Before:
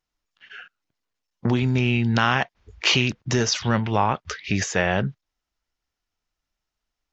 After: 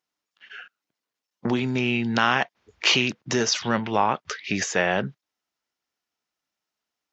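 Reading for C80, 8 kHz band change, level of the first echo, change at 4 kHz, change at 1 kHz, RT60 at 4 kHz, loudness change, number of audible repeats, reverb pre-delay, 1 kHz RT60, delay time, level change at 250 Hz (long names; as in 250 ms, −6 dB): no reverb audible, can't be measured, no echo audible, 0.0 dB, 0.0 dB, no reverb audible, −1.0 dB, no echo audible, no reverb audible, no reverb audible, no echo audible, −2.0 dB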